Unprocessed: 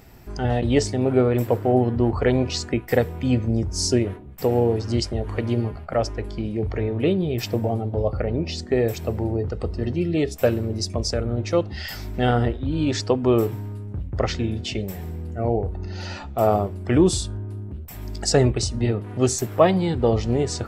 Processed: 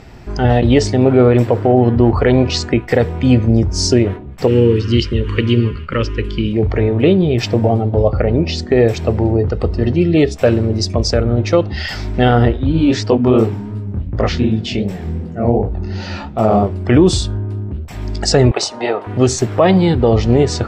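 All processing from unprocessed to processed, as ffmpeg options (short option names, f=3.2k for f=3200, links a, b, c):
-filter_complex "[0:a]asettb=1/sr,asplit=3[a][b][c];[a]atrim=end=4.474[d];[b]atrim=start=4.47:end=6.53,asetpts=PTS-STARTPTS,afade=t=in:d=0.004:c=qsin,afade=t=out:st=2.056:d=0.004:c=qsin,asuperstop=centerf=720:order=4:qfactor=1.2,acrossover=split=4400[e][f];[f]acompressor=threshold=-47dB:ratio=4:attack=1:release=60[g];[e][g]amix=inputs=2:normalize=0,equalizer=f=2.9k:t=o:w=0.41:g=11.5[h];[c]atrim=start=6.526[i];[d][h]acrossfade=d=0.004:c1=hsin:c2=qsin[j];[j][i]acrossfade=d=0.004:c1=qsin:c2=hsin,asettb=1/sr,asplit=3[k][l][m];[k]atrim=end=12.724[n];[l]atrim=start=12.72:end=16.63,asetpts=PTS-STARTPTS,afade=t=in:d=0.004:c=qsin,afade=t=out:st=3.906:d=0.004:c=qsin,equalizer=f=210:t=o:w=0.65:g=5.5,flanger=delay=17.5:depth=7.7:speed=2.7[o];[m]atrim=start=16.626[p];[n][o]acrossfade=d=0.004:c1=hsin:c2=qsin[q];[q][p]acrossfade=d=0.004:c1=qsin:c2=hsin,asettb=1/sr,asplit=3[r][s][t];[r]atrim=end=18.514[u];[s]atrim=start=18.51:end=19.07,asetpts=PTS-STARTPTS,afade=t=in:d=0.004:c=qsin,afade=t=out:st=0.556:d=0.004:c=qsin,highpass=540,equalizer=f=840:w=1:g=11[v];[t]atrim=start=19.066[w];[u][v]acrossfade=d=0.004:c1=hsin:c2=qsin[x];[x][w]acrossfade=d=0.004:c1=qsin:c2=hsin,lowpass=5.4k,alimiter=level_in=11dB:limit=-1dB:release=50:level=0:latency=1,volume=-1dB"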